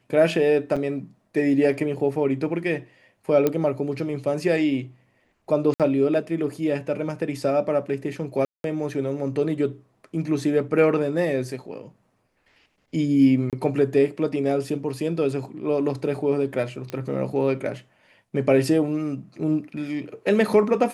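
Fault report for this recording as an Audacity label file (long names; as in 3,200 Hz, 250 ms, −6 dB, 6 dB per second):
0.760000	0.770000	drop-out 6 ms
3.470000	3.470000	click −9 dBFS
5.740000	5.800000	drop-out 57 ms
8.450000	8.640000	drop-out 192 ms
13.500000	13.530000	drop-out 27 ms
16.900000	16.900000	click −17 dBFS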